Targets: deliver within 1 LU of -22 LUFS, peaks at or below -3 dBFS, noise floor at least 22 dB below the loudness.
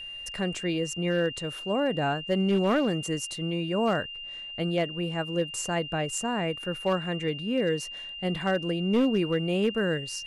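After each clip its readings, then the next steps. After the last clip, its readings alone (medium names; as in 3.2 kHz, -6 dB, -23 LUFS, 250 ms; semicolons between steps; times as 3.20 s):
clipped samples 0.6%; clipping level -18.0 dBFS; steady tone 2.8 kHz; tone level -37 dBFS; loudness -28.0 LUFS; peak level -18.0 dBFS; loudness target -22.0 LUFS
-> clip repair -18 dBFS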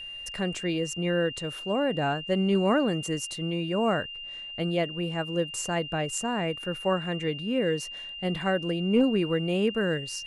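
clipped samples 0.0%; steady tone 2.8 kHz; tone level -37 dBFS
-> band-stop 2.8 kHz, Q 30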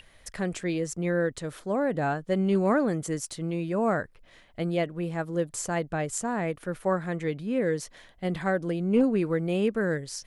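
steady tone not found; loudness -28.5 LUFS; peak level -12.5 dBFS; loudness target -22.0 LUFS
-> trim +6.5 dB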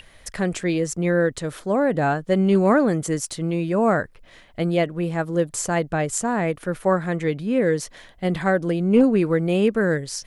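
loudness -22.0 LUFS; peak level -6.0 dBFS; noise floor -50 dBFS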